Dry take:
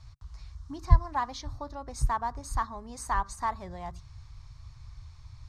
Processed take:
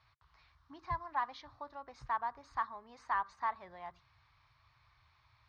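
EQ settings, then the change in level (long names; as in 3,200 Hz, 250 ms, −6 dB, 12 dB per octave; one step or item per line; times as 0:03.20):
resonant band-pass 2,200 Hz, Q 0.63
high-frequency loss of the air 250 metres
0.0 dB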